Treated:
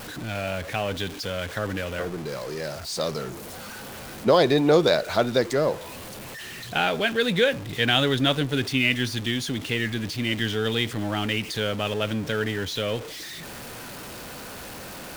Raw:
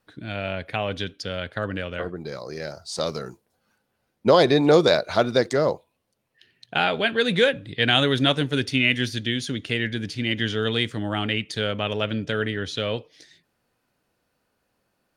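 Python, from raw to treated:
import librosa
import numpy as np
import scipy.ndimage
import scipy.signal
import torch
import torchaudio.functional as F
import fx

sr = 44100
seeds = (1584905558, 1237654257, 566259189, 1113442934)

y = x + 0.5 * 10.0 ** (-30.0 / 20.0) * np.sign(x)
y = y * librosa.db_to_amplitude(-2.5)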